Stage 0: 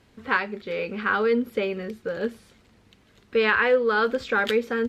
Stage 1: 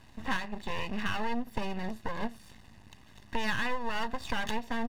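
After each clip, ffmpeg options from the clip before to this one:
-af "acompressor=threshold=-34dB:ratio=3,aeval=exprs='max(val(0),0)':c=same,aecho=1:1:1.1:0.59,volume=4.5dB"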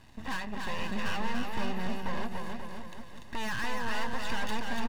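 -filter_complex "[0:a]asoftclip=type=hard:threshold=-26.5dB,asplit=2[a][b];[b]aecho=0:1:290|536.5|746|924.1|1076:0.631|0.398|0.251|0.158|0.1[c];[a][c]amix=inputs=2:normalize=0"

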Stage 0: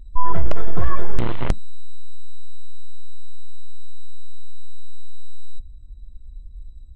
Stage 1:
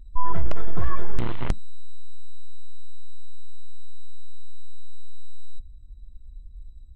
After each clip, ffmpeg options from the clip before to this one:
-af "equalizer=f=550:t=o:w=0.77:g=-3.5,volume=-4dB"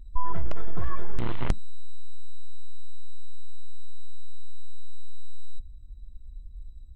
-af "acompressor=threshold=-13dB:ratio=6"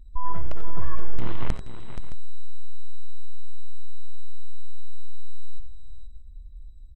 -af "aecho=1:1:61|73|90|476|617:0.126|0.141|0.282|0.316|0.168,volume=-2dB"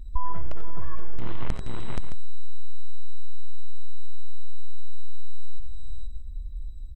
-af "acompressor=threshold=-22dB:ratio=6,volume=7.5dB"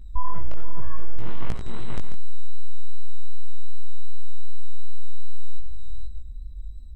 -af "flanger=delay=17:depth=5.1:speed=2.6,volume=3dB"

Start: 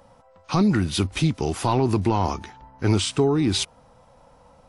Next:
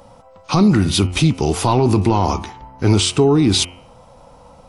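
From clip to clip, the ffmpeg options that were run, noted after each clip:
-filter_complex "[0:a]equalizer=f=1.7k:t=o:w=0.46:g=-6,bandreject=f=89.03:t=h:w=4,bandreject=f=178.06:t=h:w=4,bandreject=f=267.09:t=h:w=4,bandreject=f=356.12:t=h:w=4,bandreject=f=445.15:t=h:w=4,bandreject=f=534.18:t=h:w=4,bandreject=f=623.21:t=h:w=4,bandreject=f=712.24:t=h:w=4,bandreject=f=801.27:t=h:w=4,bandreject=f=890.3:t=h:w=4,bandreject=f=979.33:t=h:w=4,bandreject=f=1.06836k:t=h:w=4,bandreject=f=1.15739k:t=h:w=4,bandreject=f=1.24642k:t=h:w=4,bandreject=f=1.33545k:t=h:w=4,bandreject=f=1.42448k:t=h:w=4,bandreject=f=1.51351k:t=h:w=4,bandreject=f=1.60254k:t=h:w=4,bandreject=f=1.69157k:t=h:w=4,bandreject=f=1.7806k:t=h:w=4,bandreject=f=1.86963k:t=h:w=4,bandreject=f=1.95866k:t=h:w=4,bandreject=f=2.04769k:t=h:w=4,bandreject=f=2.13672k:t=h:w=4,bandreject=f=2.22575k:t=h:w=4,bandreject=f=2.31478k:t=h:w=4,bandreject=f=2.40381k:t=h:w=4,bandreject=f=2.49284k:t=h:w=4,bandreject=f=2.58187k:t=h:w=4,bandreject=f=2.6709k:t=h:w=4,bandreject=f=2.75993k:t=h:w=4,bandreject=f=2.84896k:t=h:w=4,bandreject=f=2.93799k:t=h:w=4,bandreject=f=3.02702k:t=h:w=4,bandreject=f=3.11605k:t=h:w=4,asplit=2[a][b];[b]alimiter=limit=-17.5dB:level=0:latency=1:release=23,volume=2dB[c];[a][c]amix=inputs=2:normalize=0,volume=2dB"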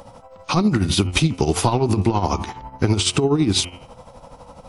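-af "acompressor=threshold=-17dB:ratio=6,tremolo=f=12:d=0.62,volume=5dB"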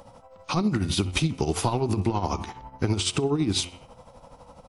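-af "aecho=1:1:63|126|189:0.0631|0.029|0.0134,volume=-6.5dB"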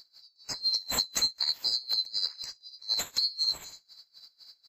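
-af "afftfilt=real='real(if(lt(b,736),b+184*(1-2*mod(floor(b/184),2)),b),0)':imag='imag(if(lt(b,736),b+184*(1-2*mod(floor(b/184),2)),b),0)':win_size=2048:overlap=0.75,acrusher=bits=9:mode=log:mix=0:aa=0.000001,tremolo=f=4:d=0.94,volume=-2dB"

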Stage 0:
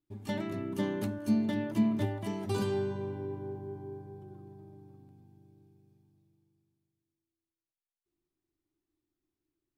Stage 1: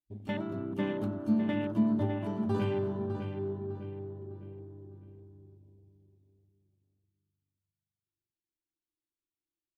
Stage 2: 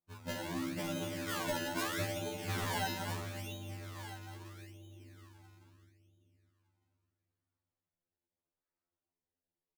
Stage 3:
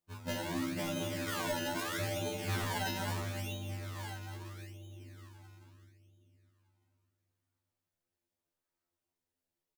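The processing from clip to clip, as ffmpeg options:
-filter_complex "[0:a]afwtdn=0.00631,equalizer=f=3.2k:t=o:w=0.95:g=8.5,asplit=2[a][b];[b]adelay=604,lowpass=f=4.3k:p=1,volume=-7.5dB,asplit=2[c][d];[d]adelay=604,lowpass=f=4.3k:p=1,volume=0.36,asplit=2[e][f];[f]adelay=604,lowpass=f=4.3k:p=1,volume=0.36,asplit=2[g][h];[h]adelay=604,lowpass=f=4.3k:p=1,volume=0.36[i];[a][c][e][g][i]amix=inputs=5:normalize=0"
-filter_complex "[0:a]asplit=2[a][b];[b]adelay=170,lowpass=f=2k:p=1,volume=-7dB,asplit=2[c][d];[d]adelay=170,lowpass=f=2k:p=1,volume=0.51,asplit=2[e][f];[f]adelay=170,lowpass=f=2k:p=1,volume=0.51,asplit=2[g][h];[h]adelay=170,lowpass=f=2k:p=1,volume=0.51,asplit=2[i][j];[j]adelay=170,lowpass=f=2k:p=1,volume=0.51,asplit=2[k][l];[l]adelay=170,lowpass=f=2k:p=1,volume=0.51[m];[a][c][e][g][i][k][m]amix=inputs=7:normalize=0,acrusher=samples=26:mix=1:aa=0.000001:lfo=1:lforange=26:lforate=0.77,afftfilt=real='re*2*eq(mod(b,4),0)':imag='im*2*eq(mod(b,4),0)':win_size=2048:overlap=0.75"
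-filter_complex "[0:a]alimiter=level_in=6dB:limit=-24dB:level=0:latency=1:release=29,volume=-6dB,asplit=2[a][b];[b]adelay=20,volume=-11dB[c];[a][c]amix=inputs=2:normalize=0,volume=2.5dB"

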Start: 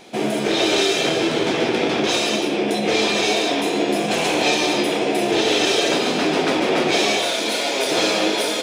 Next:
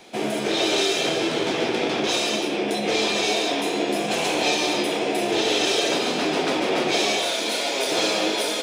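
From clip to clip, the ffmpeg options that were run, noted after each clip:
-filter_complex "[0:a]equalizer=f=120:w=0.3:g=-3.5,acrossover=split=160|1500|2000[a][b][c][d];[c]alimiter=level_in=10.5dB:limit=-24dB:level=0:latency=1,volume=-10.5dB[e];[a][b][e][d]amix=inputs=4:normalize=0,volume=-2dB"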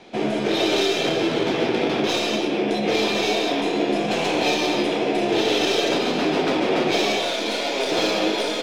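-filter_complex "[0:a]lowshelf=f=410:g=5,acrossover=split=6200[a][b];[b]aeval=exprs='max(val(0),0)':c=same[c];[a][c]amix=inputs=2:normalize=0,adynamicsmooth=sensitivity=2.5:basefreq=6.8k"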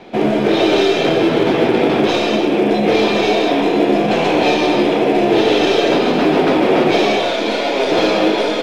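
-af "acontrast=57,acrusher=bits=5:mode=log:mix=0:aa=0.000001,aemphasis=mode=reproduction:type=75fm,volume=1.5dB"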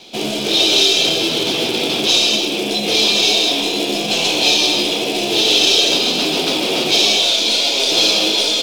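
-af "aexciter=amount=13.7:drive=3:freq=2.8k,volume=-8dB"

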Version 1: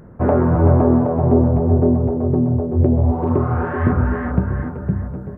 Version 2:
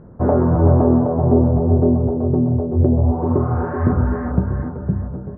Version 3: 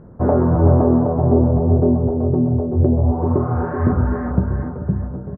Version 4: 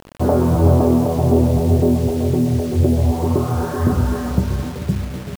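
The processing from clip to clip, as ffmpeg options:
-af "lowpass=1.2k"
-filter_complex "[0:a]asplit=2[a][b];[b]adelay=437.3,volume=-16dB,highshelf=f=4k:g=-9.84[c];[a][c]amix=inputs=2:normalize=0"
-af "acrusher=bits=5:mix=0:aa=0.000001"

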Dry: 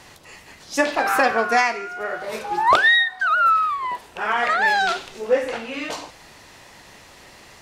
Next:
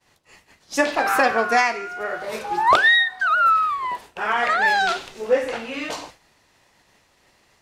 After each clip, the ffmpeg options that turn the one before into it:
-af "agate=range=-33dB:threshold=-36dB:ratio=3:detection=peak"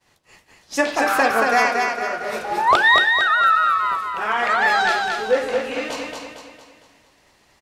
-af "aecho=1:1:228|456|684|912|1140|1368:0.631|0.29|0.134|0.0614|0.0283|0.013"

